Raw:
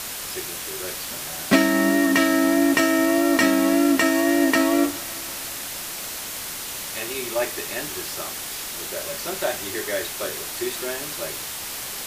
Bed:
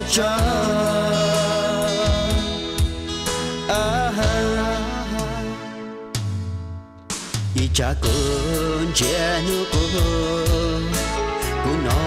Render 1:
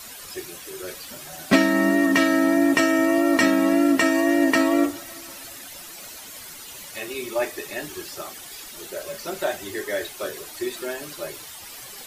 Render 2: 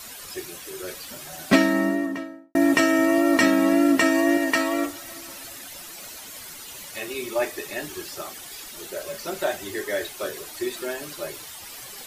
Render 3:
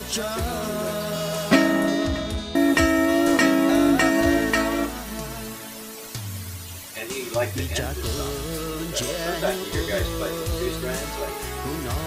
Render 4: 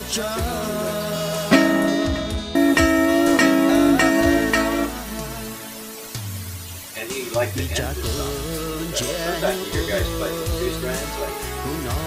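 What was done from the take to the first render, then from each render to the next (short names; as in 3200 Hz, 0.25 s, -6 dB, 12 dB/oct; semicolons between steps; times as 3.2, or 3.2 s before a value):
denoiser 12 dB, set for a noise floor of -33 dBFS
1.49–2.55 studio fade out; 4.37–5.04 bell 220 Hz -7 dB 2.9 oct
add bed -8.5 dB
gain +2.5 dB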